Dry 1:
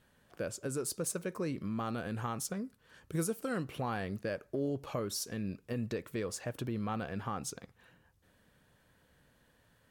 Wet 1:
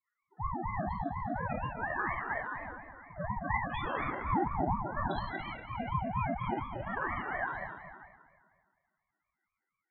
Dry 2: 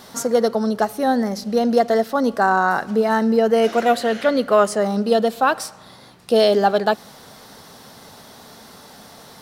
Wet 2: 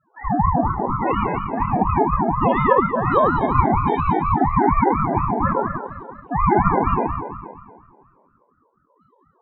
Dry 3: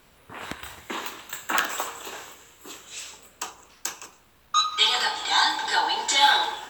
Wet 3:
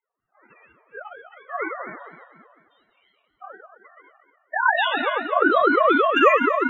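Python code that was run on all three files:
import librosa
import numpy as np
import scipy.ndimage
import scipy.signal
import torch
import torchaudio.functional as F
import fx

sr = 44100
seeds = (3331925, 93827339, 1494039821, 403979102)

p1 = fx.sine_speech(x, sr)
p2 = scipy.signal.sosfilt(scipy.signal.butter(4, 520.0, 'highpass', fs=sr, output='sos'), p1)
p3 = fx.dynamic_eq(p2, sr, hz=1400.0, q=1.1, threshold_db=-36.0, ratio=4.0, max_db=-5)
p4 = fx.leveller(p3, sr, passes=3)
p5 = fx.spec_topn(p4, sr, count=8)
p6 = (np.mod(10.0 ** (11.5 / 20.0) * p5 + 1.0, 2.0) - 1.0) / 10.0 ** (11.5 / 20.0)
p7 = p5 + F.gain(torch.from_numpy(p6), -3.5).numpy()
p8 = fx.spec_topn(p7, sr, count=4)
p9 = p8 + fx.room_early_taps(p8, sr, ms=(24, 39, 70), db=(-8.0, -7.5, -8.0), dry=0)
p10 = fx.rev_plate(p9, sr, seeds[0], rt60_s=1.8, hf_ratio=0.7, predelay_ms=0, drr_db=-4.5)
p11 = fx.ring_lfo(p10, sr, carrier_hz=400.0, swing_pct=50, hz=4.2)
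y = F.gain(torch.from_numpy(p11), -7.5).numpy()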